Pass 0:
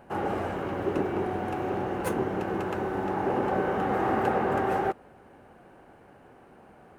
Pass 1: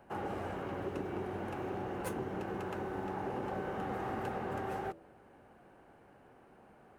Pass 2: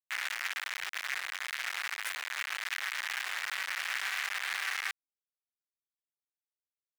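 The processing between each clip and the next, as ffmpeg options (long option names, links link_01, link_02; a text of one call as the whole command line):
ffmpeg -i in.wav -filter_complex "[0:a]bandreject=frequency=82.29:width_type=h:width=4,bandreject=frequency=164.58:width_type=h:width=4,bandreject=frequency=246.87:width_type=h:width=4,bandreject=frequency=329.16:width_type=h:width=4,bandreject=frequency=411.45:width_type=h:width=4,bandreject=frequency=493.74:width_type=h:width=4,bandreject=frequency=576.03:width_type=h:width=4,bandreject=frequency=658.32:width_type=h:width=4,bandreject=frequency=740.61:width_type=h:width=4,acrossover=split=160|3000[link_01][link_02][link_03];[link_02]acompressor=threshold=-29dB:ratio=6[link_04];[link_01][link_04][link_03]amix=inputs=3:normalize=0,volume=-6.5dB" out.wav
ffmpeg -i in.wav -filter_complex "[0:a]acrusher=bits=3:dc=4:mix=0:aa=0.000001,asplit=2[link_01][link_02];[link_02]highpass=frequency=720:poles=1,volume=17dB,asoftclip=type=tanh:threshold=-28.5dB[link_03];[link_01][link_03]amix=inputs=2:normalize=0,lowpass=frequency=7900:poles=1,volume=-6dB,highpass=frequency=1900:width_type=q:width=2.3,volume=4dB" out.wav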